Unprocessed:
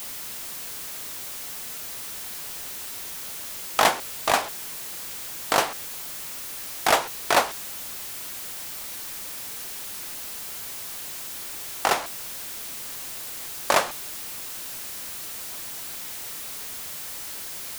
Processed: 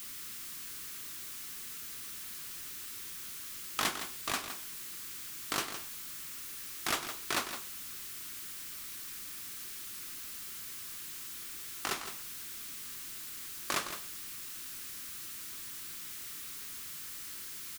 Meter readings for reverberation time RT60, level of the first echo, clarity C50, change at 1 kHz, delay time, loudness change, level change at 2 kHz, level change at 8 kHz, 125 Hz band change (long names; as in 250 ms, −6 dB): no reverb audible, −10.0 dB, no reverb audible, −15.5 dB, 163 ms, −10.0 dB, −11.0 dB, −8.0 dB, −8.0 dB